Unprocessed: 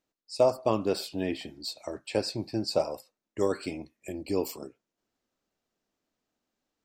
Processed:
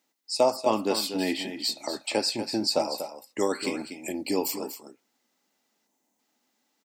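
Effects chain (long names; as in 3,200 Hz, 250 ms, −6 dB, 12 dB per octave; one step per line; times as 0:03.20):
high-pass filter 82 Hz
RIAA equalisation recording
gain on a spectral selection 0:05.87–0:06.19, 1,100–5,900 Hz −8 dB
high-shelf EQ 7,900 Hz −11 dB
in parallel at 0 dB: downward compressor, threshold −37 dBFS, peak gain reduction 16.5 dB
on the sum: hollow resonant body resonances 240/840/2,000 Hz, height 9 dB, ringing for 30 ms
on a send: single-tap delay 241 ms −10 dB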